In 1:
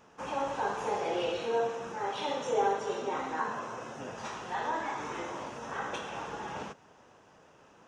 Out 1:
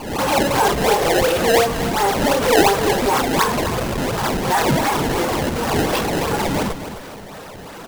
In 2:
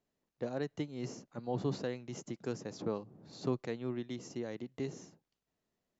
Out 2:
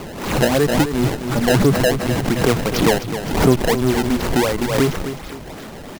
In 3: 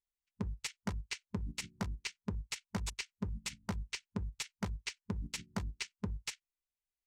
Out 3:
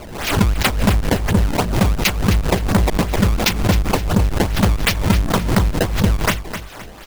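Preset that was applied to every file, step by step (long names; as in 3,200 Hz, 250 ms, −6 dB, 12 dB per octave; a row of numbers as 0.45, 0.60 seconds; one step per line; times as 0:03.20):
converter with a step at zero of −41 dBFS
low-pass filter 11,000 Hz 12 dB per octave
reverb reduction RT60 1.2 s
in parallel at −1.5 dB: comparator with hysteresis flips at −40.5 dBFS
on the sum: sample-and-hold swept by an LFO 22×, swing 160% 2.8 Hz
on a send: repeating echo 259 ms, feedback 37%, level −10.5 dB
on the sum: background raised ahead of every attack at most 67 dB per second
loudness normalisation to −18 LKFS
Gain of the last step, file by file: +12.5, +17.0, +18.5 decibels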